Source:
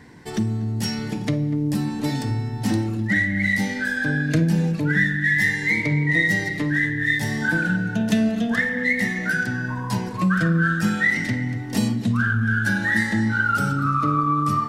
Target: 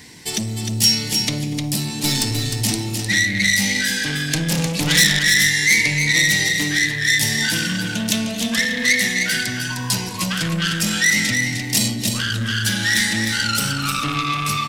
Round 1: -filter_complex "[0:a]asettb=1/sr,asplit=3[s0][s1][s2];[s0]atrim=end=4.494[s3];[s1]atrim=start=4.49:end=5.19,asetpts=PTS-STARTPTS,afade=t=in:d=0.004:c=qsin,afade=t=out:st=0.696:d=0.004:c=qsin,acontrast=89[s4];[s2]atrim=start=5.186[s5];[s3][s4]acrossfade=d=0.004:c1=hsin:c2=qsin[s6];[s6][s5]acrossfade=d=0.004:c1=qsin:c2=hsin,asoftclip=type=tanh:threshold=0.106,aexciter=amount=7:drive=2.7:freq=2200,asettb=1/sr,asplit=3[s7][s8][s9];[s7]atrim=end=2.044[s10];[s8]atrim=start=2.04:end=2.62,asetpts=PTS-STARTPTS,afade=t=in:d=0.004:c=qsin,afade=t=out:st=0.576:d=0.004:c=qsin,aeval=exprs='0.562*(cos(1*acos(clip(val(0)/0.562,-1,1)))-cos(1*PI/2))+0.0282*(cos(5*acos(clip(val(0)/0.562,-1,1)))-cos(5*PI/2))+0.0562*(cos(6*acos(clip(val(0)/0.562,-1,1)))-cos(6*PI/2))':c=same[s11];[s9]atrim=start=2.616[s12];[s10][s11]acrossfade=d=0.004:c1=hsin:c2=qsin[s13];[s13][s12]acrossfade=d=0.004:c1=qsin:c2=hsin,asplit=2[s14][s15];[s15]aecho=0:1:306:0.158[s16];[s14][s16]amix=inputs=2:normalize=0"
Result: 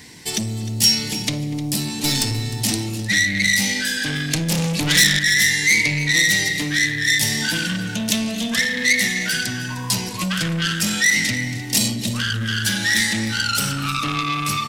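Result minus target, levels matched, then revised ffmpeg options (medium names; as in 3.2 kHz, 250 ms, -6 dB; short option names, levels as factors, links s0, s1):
echo-to-direct -10 dB
-filter_complex "[0:a]asettb=1/sr,asplit=3[s0][s1][s2];[s0]atrim=end=4.494[s3];[s1]atrim=start=4.49:end=5.19,asetpts=PTS-STARTPTS,afade=t=in:d=0.004:c=qsin,afade=t=out:st=0.696:d=0.004:c=qsin,acontrast=89[s4];[s2]atrim=start=5.186[s5];[s3][s4]acrossfade=d=0.004:c1=hsin:c2=qsin[s6];[s6][s5]acrossfade=d=0.004:c1=qsin:c2=hsin,asoftclip=type=tanh:threshold=0.106,aexciter=amount=7:drive=2.7:freq=2200,asettb=1/sr,asplit=3[s7][s8][s9];[s7]atrim=end=2.044[s10];[s8]atrim=start=2.04:end=2.62,asetpts=PTS-STARTPTS,afade=t=in:d=0.004:c=qsin,afade=t=out:st=0.576:d=0.004:c=qsin,aeval=exprs='0.562*(cos(1*acos(clip(val(0)/0.562,-1,1)))-cos(1*PI/2))+0.0282*(cos(5*acos(clip(val(0)/0.562,-1,1)))-cos(5*PI/2))+0.0562*(cos(6*acos(clip(val(0)/0.562,-1,1)))-cos(6*PI/2))':c=same[s11];[s9]atrim=start=2.616[s12];[s10][s11]acrossfade=d=0.004:c1=hsin:c2=qsin[s13];[s13][s12]acrossfade=d=0.004:c1=qsin:c2=hsin,asplit=2[s14][s15];[s15]aecho=0:1:306:0.501[s16];[s14][s16]amix=inputs=2:normalize=0"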